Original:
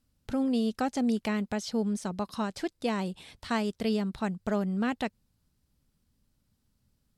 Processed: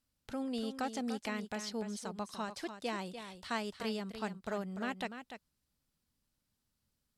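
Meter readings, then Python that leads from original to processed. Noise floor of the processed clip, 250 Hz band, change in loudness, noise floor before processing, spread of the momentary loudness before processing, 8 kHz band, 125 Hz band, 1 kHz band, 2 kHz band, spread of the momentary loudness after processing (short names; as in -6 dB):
-84 dBFS, -10.5 dB, -8.5 dB, -75 dBFS, 7 LU, -3.5 dB, -11.5 dB, -5.5 dB, -4.0 dB, 7 LU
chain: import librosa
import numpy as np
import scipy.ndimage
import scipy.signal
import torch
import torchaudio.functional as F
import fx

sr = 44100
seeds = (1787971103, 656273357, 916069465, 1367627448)

p1 = fx.low_shelf(x, sr, hz=410.0, db=-9.5)
p2 = p1 + fx.echo_single(p1, sr, ms=294, db=-9.5, dry=0)
y = p2 * 10.0 ** (-4.0 / 20.0)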